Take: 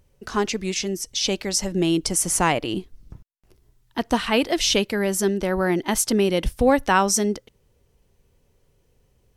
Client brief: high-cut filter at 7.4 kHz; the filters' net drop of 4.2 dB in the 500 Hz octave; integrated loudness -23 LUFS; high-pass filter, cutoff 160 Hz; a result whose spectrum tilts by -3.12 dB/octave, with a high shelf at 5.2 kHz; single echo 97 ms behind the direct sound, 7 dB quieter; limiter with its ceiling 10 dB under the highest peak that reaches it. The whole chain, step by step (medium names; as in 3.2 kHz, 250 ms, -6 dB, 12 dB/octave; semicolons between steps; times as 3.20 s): high-pass 160 Hz; low-pass 7.4 kHz; peaking EQ 500 Hz -5.5 dB; treble shelf 5.2 kHz +4.5 dB; peak limiter -16 dBFS; delay 97 ms -7 dB; trim +2.5 dB